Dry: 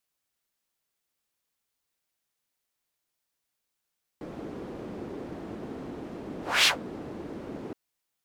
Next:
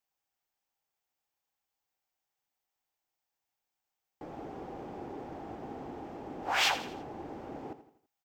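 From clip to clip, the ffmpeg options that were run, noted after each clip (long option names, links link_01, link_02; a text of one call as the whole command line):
ffmpeg -i in.wav -filter_complex "[0:a]equalizer=frequency=200:width_type=o:width=0.33:gain=-6,equalizer=frequency=800:width_type=o:width=0.33:gain=12,equalizer=frequency=4000:width_type=o:width=0.33:gain=-4,equalizer=frequency=10000:width_type=o:width=0.33:gain=-12,asplit=2[link_01][link_02];[link_02]aecho=0:1:83|166|249|332:0.237|0.104|0.0459|0.0202[link_03];[link_01][link_03]amix=inputs=2:normalize=0,volume=-5dB" out.wav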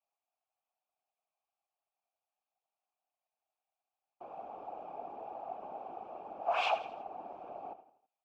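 ffmpeg -i in.wav -filter_complex "[0:a]asplit=3[link_01][link_02][link_03];[link_01]bandpass=frequency=730:width_type=q:width=8,volume=0dB[link_04];[link_02]bandpass=frequency=1090:width_type=q:width=8,volume=-6dB[link_05];[link_03]bandpass=frequency=2440:width_type=q:width=8,volume=-9dB[link_06];[link_04][link_05][link_06]amix=inputs=3:normalize=0,afftfilt=real='hypot(re,im)*cos(2*PI*random(0))':imag='hypot(re,im)*sin(2*PI*random(1))':win_size=512:overlap=0.75,volume=13dB" out.wav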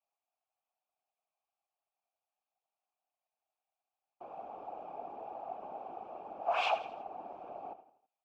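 ffmpeg -i in.wav -af anull out.wav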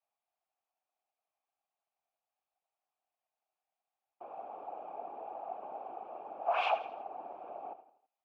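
ffmpeg -i in.wav -af "bass=frequency=250:gain=-10,treble=frequency=4000:gain=-13,volume=1dB" out.wav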